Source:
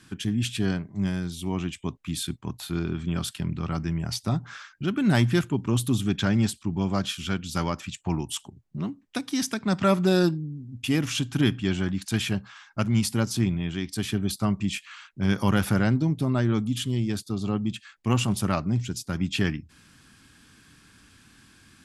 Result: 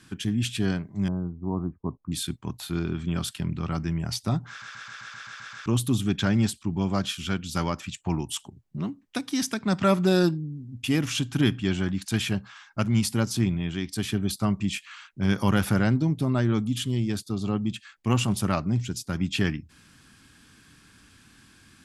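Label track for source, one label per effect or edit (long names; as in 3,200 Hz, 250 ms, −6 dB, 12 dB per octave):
1.080000	2.120000	Butterworth low-pass 1,200 Hz 48 dB per octave
4.490000	4.490000	stutter in place 0.13 s, 9 plays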